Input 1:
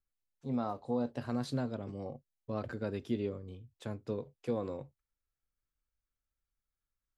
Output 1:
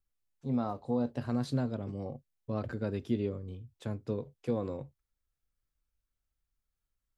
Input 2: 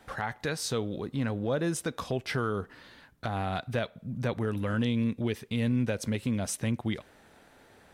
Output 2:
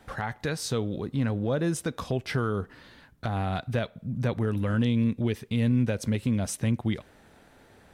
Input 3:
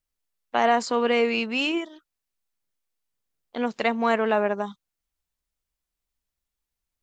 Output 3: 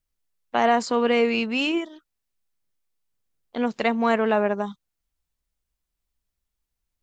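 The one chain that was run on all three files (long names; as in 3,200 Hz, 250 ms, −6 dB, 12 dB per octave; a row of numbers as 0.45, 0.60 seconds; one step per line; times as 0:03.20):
low-shelf EQ 250 Hz +6 dB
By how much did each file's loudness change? +2.5, +3.0, +1.0 LU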